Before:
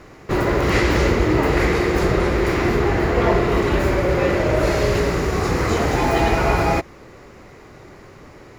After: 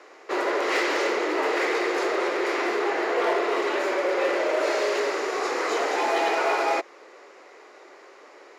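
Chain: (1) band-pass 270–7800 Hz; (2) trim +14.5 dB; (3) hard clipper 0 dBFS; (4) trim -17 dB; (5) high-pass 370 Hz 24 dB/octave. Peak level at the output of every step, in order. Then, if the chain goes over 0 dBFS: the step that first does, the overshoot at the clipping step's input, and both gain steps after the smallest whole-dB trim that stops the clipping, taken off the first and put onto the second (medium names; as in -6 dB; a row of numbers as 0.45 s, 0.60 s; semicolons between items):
-4.5 dBFS, +10.0 dBFS, 0.0 dBFS, -17.0 dBFS, -13.0 dBFS; step 2, 10.0 dB; step 2 +4.5 dB, step 4 -7 dB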